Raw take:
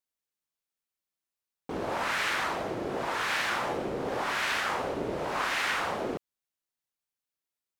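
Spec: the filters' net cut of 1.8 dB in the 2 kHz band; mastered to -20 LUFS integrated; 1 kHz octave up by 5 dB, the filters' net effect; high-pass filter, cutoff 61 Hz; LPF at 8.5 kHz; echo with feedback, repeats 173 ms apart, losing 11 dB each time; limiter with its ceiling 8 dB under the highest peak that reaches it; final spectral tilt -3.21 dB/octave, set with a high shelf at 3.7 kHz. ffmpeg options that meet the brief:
-af "highpass=61,lowpass=8500,equalizer=f=1000:t=o:g=7.5,equalizer=f=2000:t=o:g=-6.5,highshelf=f=3700:g=5.5,alimiter=limit=0.0708:level=0:latency=1,aecho=1:1:173|346|519:0.282|0.0789|0.0221,volume=3.76"

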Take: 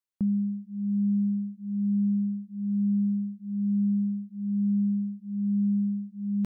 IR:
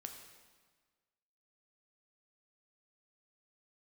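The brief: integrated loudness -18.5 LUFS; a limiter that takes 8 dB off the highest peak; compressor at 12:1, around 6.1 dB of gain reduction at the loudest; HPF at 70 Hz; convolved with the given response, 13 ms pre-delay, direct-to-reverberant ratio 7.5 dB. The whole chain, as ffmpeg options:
-filter_complex "[0:a]highpass=70,acompressor=threshold=0.0355:ratio=12,alimiter=level_in=1.88:limit=0.0631:level=0:latency=1,volume=0.531,asplit=2[s0][s1];[1:a]atrim=start_sample=2205,adelay=13[s2];[s1][s2]afir=irnorm=-1:irlink=0,volume=0.668[s3];[s0][s3]amix=inputs=2:normalize=0,volume=12.6"

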